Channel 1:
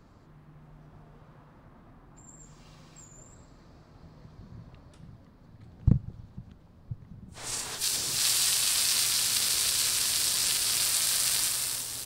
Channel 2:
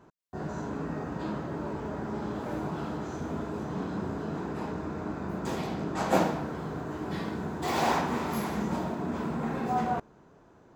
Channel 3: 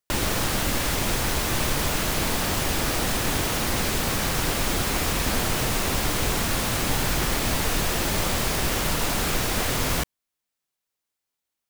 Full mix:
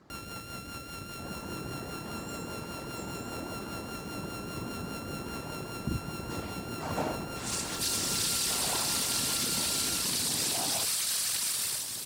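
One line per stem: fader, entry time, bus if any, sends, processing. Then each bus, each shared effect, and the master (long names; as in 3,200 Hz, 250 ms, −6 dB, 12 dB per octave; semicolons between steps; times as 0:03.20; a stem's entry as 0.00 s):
−0.5 dB, 0.00 s, bus A, no send, no processing
−7.0 dB, 0.85 s, bus A, no send, no processing
−14.0 dB, 0.00 s, no bus, no send, samples sorted by size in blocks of 32 samples; rotating-speaker cabinet horn 5 Hz
bus A: 0.0 dB, random phases in short frames; brickwall limiter −20.5 dBFS, peak gain reduction 7.5 dB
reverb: not used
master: high-pass filter 72 Hz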